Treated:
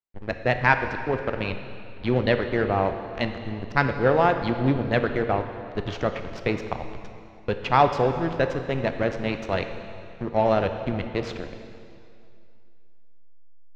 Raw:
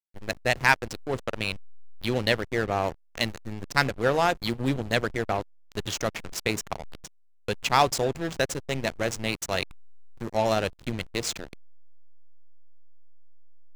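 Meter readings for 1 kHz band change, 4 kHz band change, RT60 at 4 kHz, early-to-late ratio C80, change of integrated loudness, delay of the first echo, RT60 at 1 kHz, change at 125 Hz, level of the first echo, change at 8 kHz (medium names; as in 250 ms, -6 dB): +3.5 dB, -6.0 dB, 2.3 s, 9.0 dB, +2.5 dB, no echo, 2.5 s, +4.5 dB, no echo, under -15 dB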